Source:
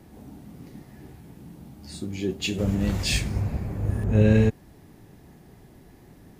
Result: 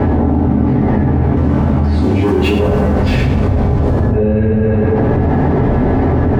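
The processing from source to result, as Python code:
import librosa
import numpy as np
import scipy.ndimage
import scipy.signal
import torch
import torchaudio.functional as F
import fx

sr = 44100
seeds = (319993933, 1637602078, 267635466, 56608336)

y = scipy.signal.sosfilt(scipy.signal.butter(2, 1200.0, 'lowpass', fs=sr, output='sos'), x)
y = fx.leveller(y, sr, passes=3, at=(1.36, 3.92))
y = fx.hum_notches(y, sr, base_hz=50, count=8)
y = fx.rev_fdn(y, sr, rt60_s=1.1, lf_ratio=0.75, hf_ratio=0.85, size_ms=70.0, drr_db=-8.0)
y = fx.env_flatten(y, sr, amount_pct=100)
y = F.gain(torch.from_numpy(y), -2.0).numpy()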